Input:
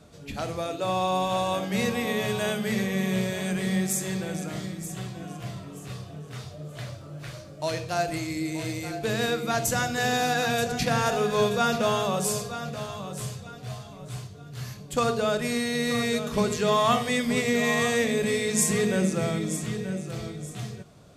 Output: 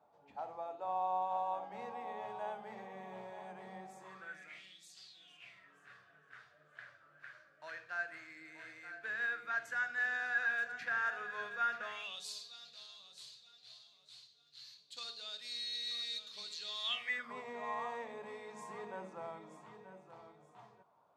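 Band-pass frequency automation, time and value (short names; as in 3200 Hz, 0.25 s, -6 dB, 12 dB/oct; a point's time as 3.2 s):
band-pass, Q 7.2
3.97 s 850 Hz
4.99 s 4900 Hz
5.76 s 1600 Hz
11.82 s 1600 Hz
12.25 s 4100 Hz
16.82 s 4100 Hz
17.37 s 930 Hz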